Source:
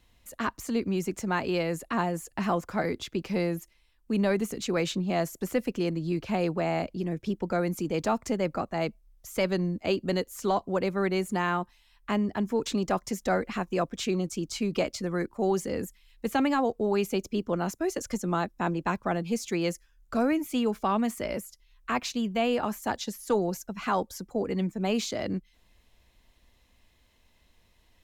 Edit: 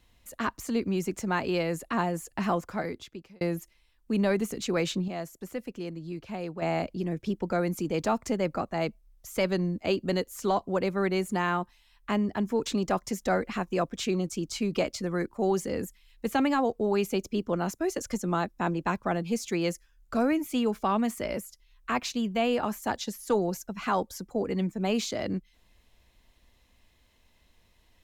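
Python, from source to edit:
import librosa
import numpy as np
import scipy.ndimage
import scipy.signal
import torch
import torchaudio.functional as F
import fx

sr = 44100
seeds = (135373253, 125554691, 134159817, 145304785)

y = fx.edit(x, sr, fx.fade_out_span(start_s=2.51, length_s=0.9),
    fx.clip_gain(start_s=5.08, length_s=1.54, db=-8.0), tone=tone)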